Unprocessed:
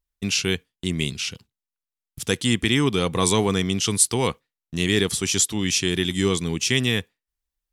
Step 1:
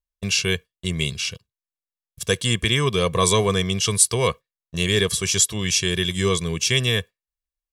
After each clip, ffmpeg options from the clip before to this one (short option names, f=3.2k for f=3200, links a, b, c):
-af "agate=range=-11dB:threshold=-35dB:ratio=16:detection=peak,aecho=1:1:1.8:0.73"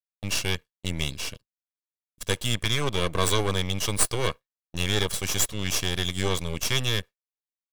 -af "aeval=exprs='max(val(0),0)':c=same,agate=range=-33dB:threshold=-37dB:ratio=3:detection=peak,volume=-2dB"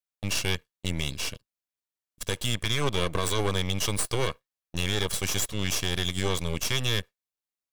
-af "alimiter=limit=-14.5dB:level=0:latency=1:release=105,volume=1dB"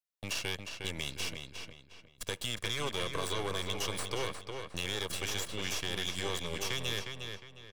-filter_complex "[0:a]acrossover=split=330|5100[a][b][c];[a]acompressor=threshold=-37dB:ratio=4[d];[b]acompressor=threshold=-29dB:ratio=4[e];[c]acompressor=threshold=-39dB:ratio=4[f];[d][e][f]amix=inputs=3:normalize=0,asplit=2[g][h];[h]adelay=358,lowpass=f=4.7k:p=1,volume=-5.5dB,asplit=2[i][j];[j]adelay=358,lowpass=f=4.7k:p=1,volume=0.35,asplit=2[k][l];[l]adelay=358,lowpass=f=4.7k:p=1,volume=0.35,asplit=2[m][n];[n]adelay=358,lowpass=f=4.7k:p=1,volume=0.35[o];[g][i][k][m][o]amix=inputs=5:normalize=0,volume=-4dB"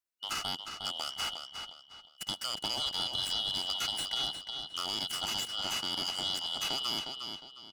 -af "afftfilt=real='real(if(lt(b,272),68*(eq(floor(b/68),0)*1+eq(floor(b/68),1)*3+eq(floor(b/68),2)*0+eq(floor(b/68),3)*2)+mod(b,68),b),0)':imag='imag(if(lt(b,272),68*(eq(floor(b/68),0)*1+eq(floor(b/68),1)*3+eq(floor(b/68),2)*0+eq(floor(b/68),3)*2)+mod(b,68),b),0)':win_size=2048:overlap=0.75"